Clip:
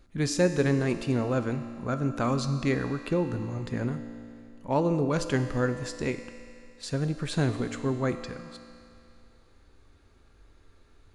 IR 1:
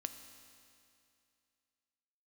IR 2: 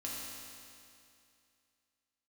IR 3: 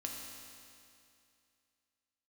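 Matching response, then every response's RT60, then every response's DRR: 1; 2.5 s, 2.5 s, 2.5 s; 8.0 dB, -5.5 dB, -0.5 dB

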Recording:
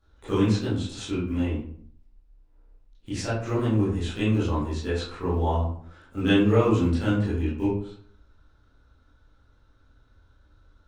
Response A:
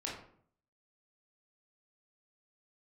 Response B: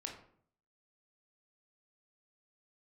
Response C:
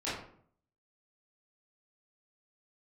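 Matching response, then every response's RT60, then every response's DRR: C; 0.60 s, 0.60 s, 0.60 s; -4.5 dB, 0.5 dB, -12.0 dB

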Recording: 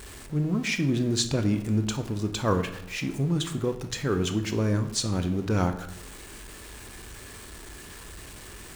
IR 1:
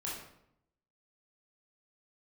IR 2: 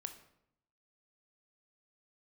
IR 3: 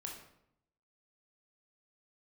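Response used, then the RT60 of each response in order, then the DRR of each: 2; 0.75 s, 0.75 s, 0.75 s; -6.0 dB, 7.5 dB, -0.5 dB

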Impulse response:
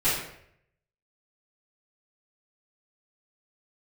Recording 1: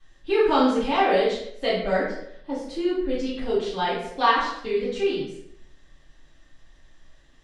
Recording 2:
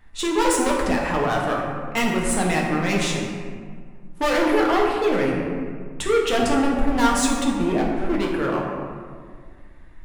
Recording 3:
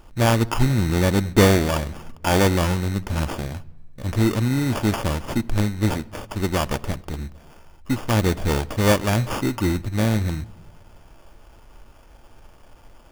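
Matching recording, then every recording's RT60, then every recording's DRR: 1; 0.70 s, 1.9 s, no single decay rate; -14.5 dB, -3.0 dB, 13.0 dB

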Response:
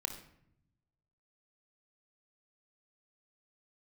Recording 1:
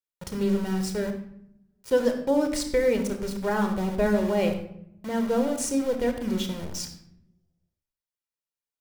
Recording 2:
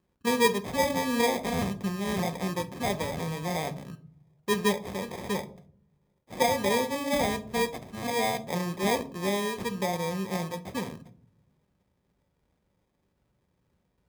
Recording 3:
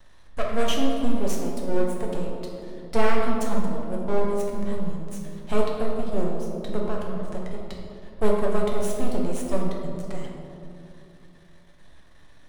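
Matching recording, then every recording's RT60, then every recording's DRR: 1; 0.75 s, no single decay rate, 2.6 s; 5.5 dB, 8.0 dB, -2.0 dB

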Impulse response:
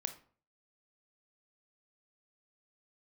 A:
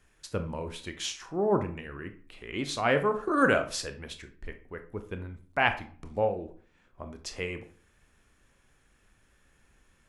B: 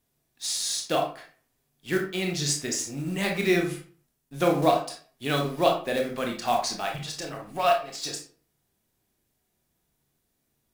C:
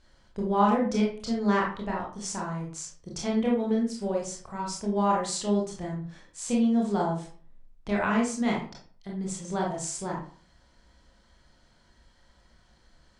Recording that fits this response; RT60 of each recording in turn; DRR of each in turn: A; 0.45 s, 0.45 s, 0.45 s; 7.5 dB, 1.5 dB, -3.0 dB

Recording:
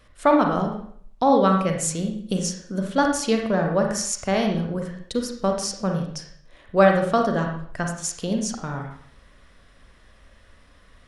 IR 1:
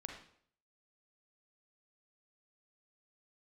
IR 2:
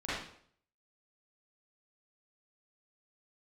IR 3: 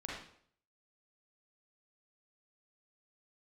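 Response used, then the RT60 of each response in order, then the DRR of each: 1; 0.60 s, 0.60 s, 0.60 s; 2.0 dB, -12.0 dB, -5.0 dB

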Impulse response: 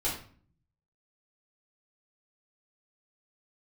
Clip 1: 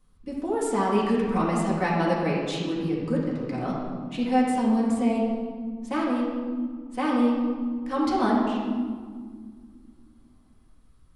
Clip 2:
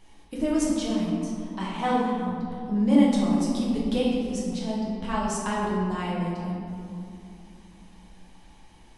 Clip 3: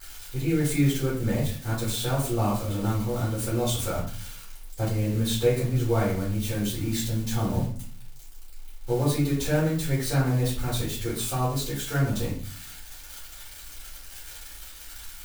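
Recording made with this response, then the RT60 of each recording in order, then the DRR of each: 3; 1.9 s, 2.7 s, 0.45 s; -5.5 dB, -6.0 dB, -8.0 dB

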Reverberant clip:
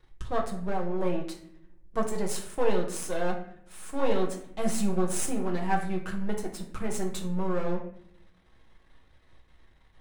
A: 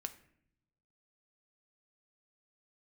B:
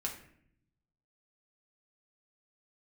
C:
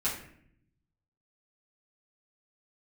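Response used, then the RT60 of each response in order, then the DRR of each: B; 0.70 s, 0.65 s, 0.65 s; 8.0 dB, -1.0 dB, -9.0 dB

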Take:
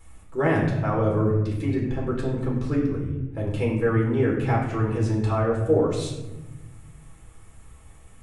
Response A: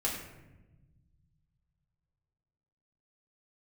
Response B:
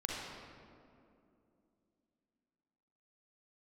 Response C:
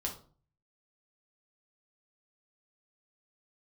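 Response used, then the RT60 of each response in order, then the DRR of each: A; 1.1 s, 2.6 s, 0.45 s; -3.5 dB, -3.5 dB, -0.5 dB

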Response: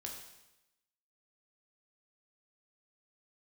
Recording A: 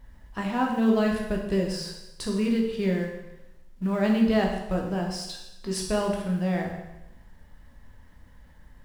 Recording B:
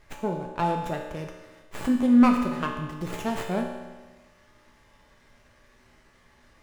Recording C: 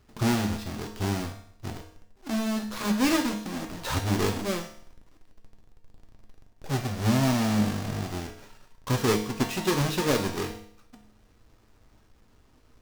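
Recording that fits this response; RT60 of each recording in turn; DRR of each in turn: A; 0.95 s, 1.3 s, 0.60 s; 0.0 dB, 0.5 dB, 1.5 dB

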